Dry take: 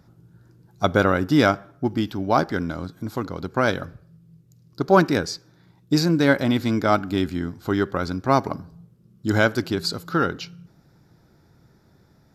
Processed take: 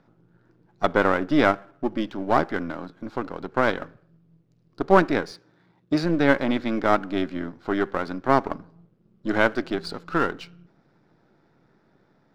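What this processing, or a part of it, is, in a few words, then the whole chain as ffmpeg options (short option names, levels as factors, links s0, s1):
crystal radio: -filter_complex "[0:a]highpass=210,lowpass=2900,aeval=exprs='if(lt(val(0),0),0.447*val(0),val(0))':c=same,asettb=1/sr,asplit=3[s0][s1][s2];[s0]atrim=end=5.314[s3];[s1]atrim=start=5.31:end=6.04,asetpts=PTS-STARTPTS,afade=t=in:d=0.004:c=qsin,afade=t=out:st=0.726:d=0.004:c=qsin,highpass=43[s4];[s2]atrim=start=6.036[s5];[s3][s4]acrossfade=d=0.004:c1=hsin:c2=qsin[s6];[s6][s5]acrossfade=d=0.004:c1=qsin:c2=hsin,volume=1.19"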